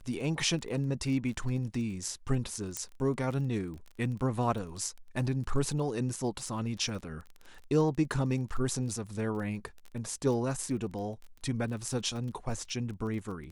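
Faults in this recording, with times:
crackle 23 per s -39 dBFS
2.77 s: pop -17 dBFS

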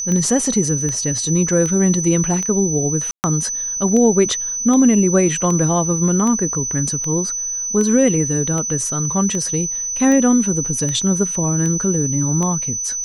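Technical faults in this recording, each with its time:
tick 78 rpm -12 dBFS
whine 6 kHz -21 dBFS
3.11–3.24 s: dropout 129 ms

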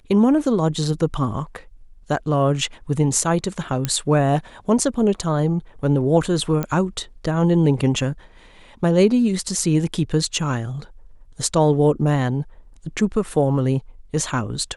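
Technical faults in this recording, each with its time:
3.85 s: pop -7 dBFS
6.63 s: pop -11 dBFS

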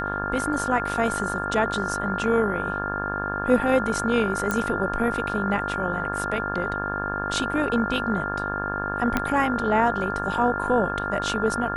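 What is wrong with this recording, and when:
buzz 50 Hz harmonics 35 -31 dBFS
whine 1.4 kHz -29 dBFS
4.51 s: pop -11 dBFS
9.17 s: pop -8 dBFS

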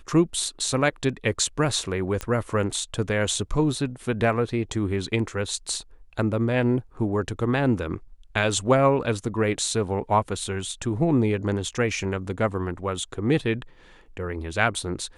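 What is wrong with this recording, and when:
2.21 s: pop -14 dBFS

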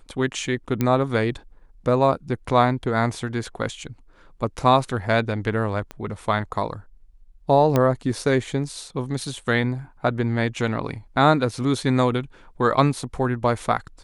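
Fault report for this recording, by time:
0.81 s: pop -9 dBFS
5.91 s: pop -20 dBFS
7.76 s: pop -7 dBFS

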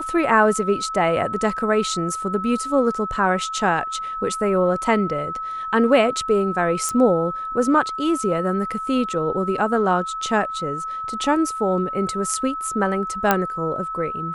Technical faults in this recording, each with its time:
whine 1.3 kHz -26 dBFS
6.89 s: pop -11 dBFS
13.31 s: pop -2 dBFS

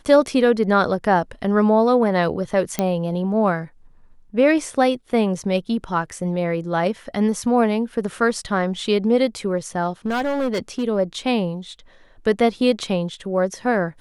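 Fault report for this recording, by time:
2.79 s: pop -6 dBFS
10.06–10.84 s: clipped -18 dBFS

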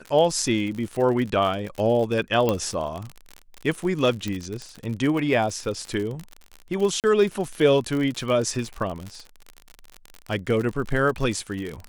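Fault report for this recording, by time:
crackle 56 per s -28 dBFS
2.49 s: pop -9 dBFS
4.28 s: pop -15 dBFS
7.00–7.04 s: dropout 38 ms

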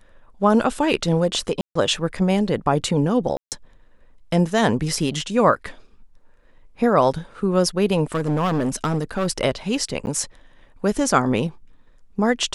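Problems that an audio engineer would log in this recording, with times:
1.61–1.75 s: dropout 144 ms
3.37–3.52 s: dropout 148 ms
8.12–9.28 s: clipped -17 dBFS
10.06–10.07 s: dropout 9.9 ms

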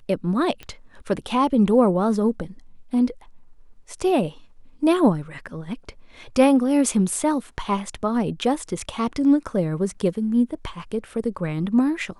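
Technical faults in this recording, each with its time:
0.63 s: pop -21 dBFS

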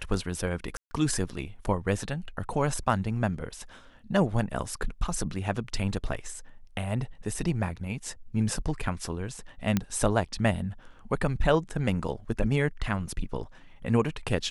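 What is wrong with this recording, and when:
0.77–0.91 s: dropout 140 ms
9.77 s: pop -11 dBFS

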